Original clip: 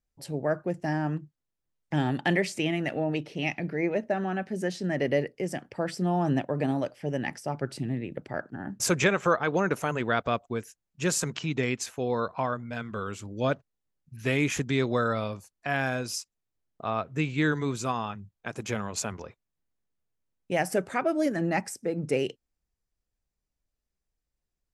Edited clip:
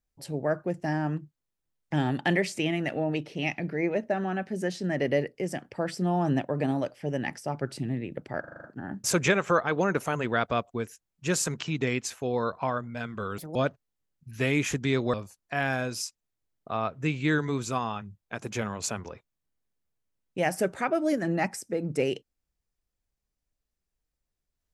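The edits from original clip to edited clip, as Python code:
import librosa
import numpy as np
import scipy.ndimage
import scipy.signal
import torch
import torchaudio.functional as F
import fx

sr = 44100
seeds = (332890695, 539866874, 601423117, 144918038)

y = fx.edit(x, sr, fx.stutter(start_s=8.4, slice_s=0.04, count=7),
    fx.speed_span(start_s=13.14, length_s=0.27, speed=1.54),
    fx.cut(start_s=14.99, length_s=0.28), tone=tone)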